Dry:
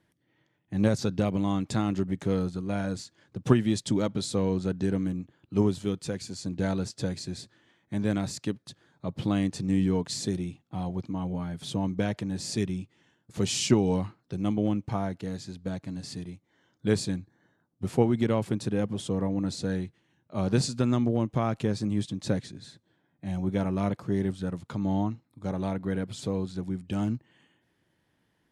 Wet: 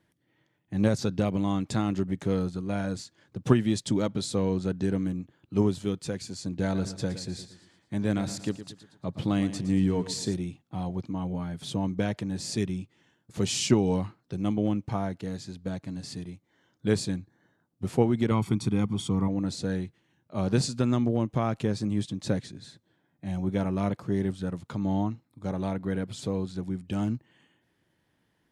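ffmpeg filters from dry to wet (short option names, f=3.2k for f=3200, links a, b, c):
-filter_complex "[0:a]asettb=1/sr,asplit=3[a][b][c];[a]atrim=end=6.634[d];[b]atrim=start=6.63:end=10.34,asetpts=PTS-STARTPTS,afade=t=in:d=0.004:c=qsin,afade=t=out:st=3.706:d=0.004:c=qsin,aecho=1:1:115|230|345|460:0.237|0.104|0.0459|0.0202,atrim=end_sample=163611[e];[c]atrim=start=10.336[f];[d][e]acrossfade=d=0.004:c1=hsin:c2=qsin[g];[g][f]acrossfade=d=0.004:c1=qsin:c2=hsin,asettb=1/sr,asplit=3[h][i][j];[h]atrim=end=18.314[k];[i]atrim=start=18.31:end=19.28,asetpts=PTS-STARTPTS,afade=t=in:d=0.004:c=qsin,afade=t=out:st=0.966:d=0.004:c=qsin,aecho=1:1:0.9:0.71,atrim=end_sample=42777[l];[j]atrim=start=19.276[m];[k][l]acrossfade=d=0.004:c1=hsin:c2=qsin[n];[n][m]acrossfade=d=0.004:c1=qsin:c2=hsin"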